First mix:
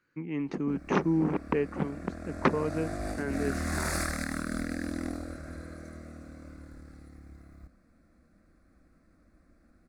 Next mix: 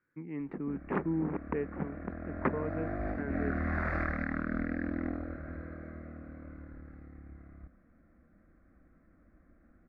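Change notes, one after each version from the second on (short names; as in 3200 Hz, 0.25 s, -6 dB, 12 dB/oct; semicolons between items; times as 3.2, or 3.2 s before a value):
speech -5.5 dB; master: add Chebyshev low-pass 2000 Hz, order 3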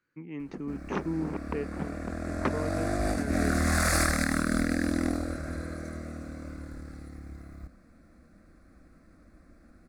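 background +6.5 dB; master: remove Chebyshev low-pass 2000 Hz, order 3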